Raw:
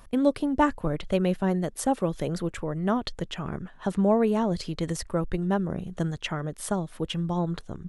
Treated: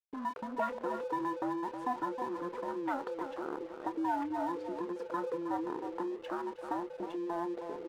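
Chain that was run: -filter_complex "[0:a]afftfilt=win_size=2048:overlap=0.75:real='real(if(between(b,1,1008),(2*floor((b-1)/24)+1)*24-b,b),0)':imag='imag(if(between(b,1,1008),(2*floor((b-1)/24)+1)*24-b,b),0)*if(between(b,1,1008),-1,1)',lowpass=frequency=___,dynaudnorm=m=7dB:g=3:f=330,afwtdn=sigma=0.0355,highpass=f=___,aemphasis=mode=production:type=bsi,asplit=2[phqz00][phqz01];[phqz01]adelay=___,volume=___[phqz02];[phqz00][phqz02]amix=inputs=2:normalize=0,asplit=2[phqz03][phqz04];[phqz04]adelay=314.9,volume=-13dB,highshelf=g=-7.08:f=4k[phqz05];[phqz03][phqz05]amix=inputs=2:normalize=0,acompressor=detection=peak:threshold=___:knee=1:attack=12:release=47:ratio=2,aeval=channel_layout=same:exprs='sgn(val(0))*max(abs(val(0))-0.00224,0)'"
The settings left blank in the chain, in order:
1.6k, 340, 28, -12dB, -43dB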